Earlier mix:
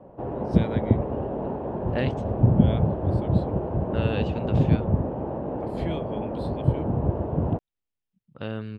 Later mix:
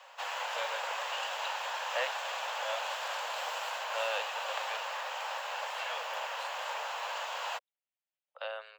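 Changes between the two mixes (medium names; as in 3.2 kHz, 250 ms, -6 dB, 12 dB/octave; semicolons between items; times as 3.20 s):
background: remove resonant low-pass 620 Hz, resonance Q 3.5; master: add steep high-pass 540 Hz 72 dB/octave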